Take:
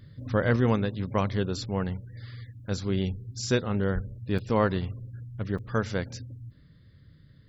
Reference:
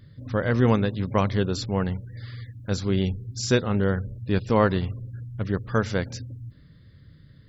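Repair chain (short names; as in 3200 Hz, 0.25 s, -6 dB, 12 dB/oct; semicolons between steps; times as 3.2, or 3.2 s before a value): de-plosive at 3.94; interpolate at 4.38/5.58, 5.6 ms; gain correction +4 dB, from 0.56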